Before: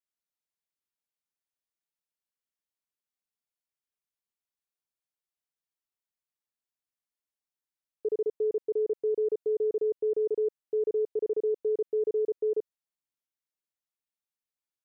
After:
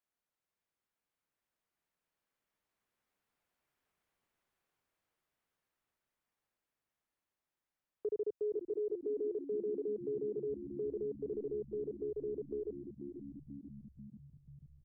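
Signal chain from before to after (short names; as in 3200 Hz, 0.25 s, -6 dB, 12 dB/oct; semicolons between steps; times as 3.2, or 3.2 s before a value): Doppler pass-by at 3.96, 8 m/s, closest 11 m; frequency-shifting echo 0.488 s, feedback 64%, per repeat -70 Hz, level -11 dB; three-band squash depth 40%; gain +3 dB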